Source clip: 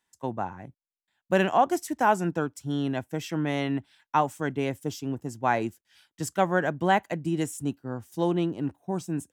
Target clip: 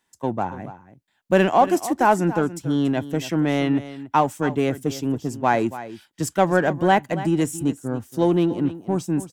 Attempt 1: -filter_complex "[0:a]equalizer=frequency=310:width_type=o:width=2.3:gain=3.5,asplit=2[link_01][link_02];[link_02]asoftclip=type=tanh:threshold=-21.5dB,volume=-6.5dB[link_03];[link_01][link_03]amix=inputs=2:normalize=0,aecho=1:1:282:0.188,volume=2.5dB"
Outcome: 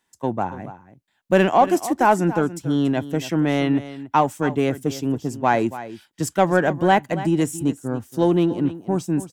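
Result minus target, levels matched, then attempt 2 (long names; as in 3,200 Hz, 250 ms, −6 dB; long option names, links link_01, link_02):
soft clipping: distortion −4 dB
-filter_complex "[0:a]equalizer=frequency=310:width_type=o:width=2.3:gain=3.5,asplit=2[link_01][link_02];[link_02]asoftclip=type=tanh:threshold=-28.5dB,volume=-6.5dB[link_03];[link_01][link_03]amix=inputs=2:normalize=0,aecho=1:1:282:0.188,volume=2.5dB"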